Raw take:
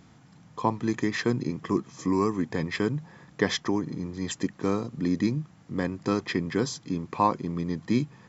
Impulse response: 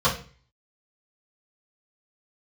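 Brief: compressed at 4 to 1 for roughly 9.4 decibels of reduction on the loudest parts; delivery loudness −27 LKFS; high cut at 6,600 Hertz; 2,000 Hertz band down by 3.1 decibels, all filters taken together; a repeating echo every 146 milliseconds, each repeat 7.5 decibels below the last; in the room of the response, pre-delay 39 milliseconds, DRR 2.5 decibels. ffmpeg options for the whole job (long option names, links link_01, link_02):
-filter_complex "[0:a]lowpass=6600,equalizer=frequency=2000:width_type=o:gain=-3.5,acompressor=threshold=-30dB:ratio=4,aecho=1:1:146|292|438|584|730:0.422|0.177|0.0744|0.0312|0.0131,asplit=2[link_01][link_02];[1:a]atrim=start_sample=2205,adelay=39[link_03];[link_02][link_03]afir=irnorm=-1:irlink=0,volume=-19.5dB[link_04];[link_01][link_04]amix=inputs=2:normalize=0,volume=5dB"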